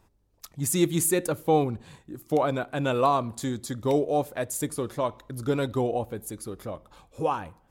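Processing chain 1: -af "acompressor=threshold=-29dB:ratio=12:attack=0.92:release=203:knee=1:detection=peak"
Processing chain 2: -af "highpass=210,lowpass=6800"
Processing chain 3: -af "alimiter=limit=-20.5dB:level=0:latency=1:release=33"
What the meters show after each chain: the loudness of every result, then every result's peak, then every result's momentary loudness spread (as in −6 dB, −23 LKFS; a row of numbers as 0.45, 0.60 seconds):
−37.0, −28.0, −31.0 LKFS; −23.0, −10.0, −20.5 dBFS; 7, 15, 11 LU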